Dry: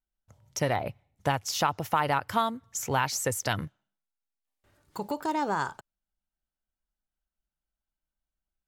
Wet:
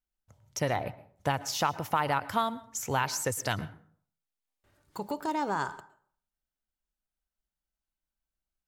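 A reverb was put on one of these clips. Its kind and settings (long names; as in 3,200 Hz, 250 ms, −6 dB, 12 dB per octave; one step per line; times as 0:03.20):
dense smooth reverb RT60 0.53 s, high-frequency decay 0.55×, pre-delay 100 ms, DRR 17 dB
level −2 dB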